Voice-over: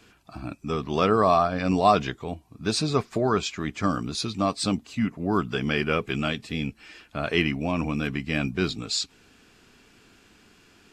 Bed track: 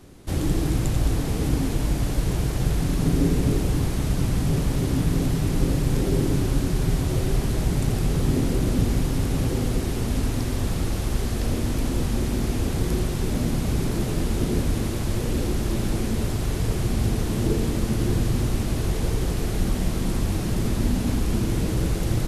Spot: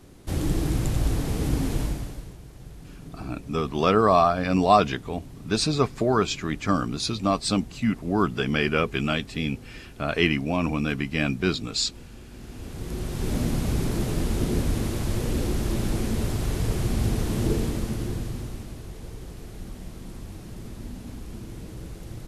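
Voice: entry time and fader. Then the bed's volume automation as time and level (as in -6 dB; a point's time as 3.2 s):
2.85 s, +1.5 dB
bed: 1.81 s -2 dB
2.38 s -20.5 dB
12.27 s -20.5 dB
13.32 s -1.5 dB
17.54 s -1.5 dB
18.85 s -15 dB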